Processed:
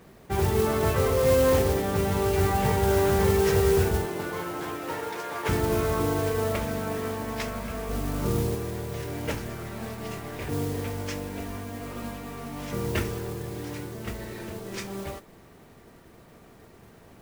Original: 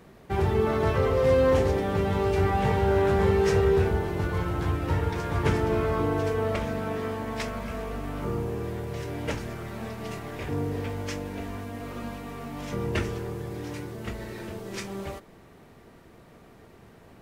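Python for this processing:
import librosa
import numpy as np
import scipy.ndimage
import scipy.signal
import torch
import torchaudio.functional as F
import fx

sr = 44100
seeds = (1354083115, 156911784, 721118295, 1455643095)

y = fx.highpass(x, sr, hz=fx.line((4.05, 200.0), (5.48, 500.0)), slope=12, at=(4.05, 5.48), fade=0.02)
y = fx.low_shelf(y, sr, hz=450.0, db=5.0, at=(7.89, 8.55))
y = fx.mod_noise(y, sr, seeds[0], snr_db=15)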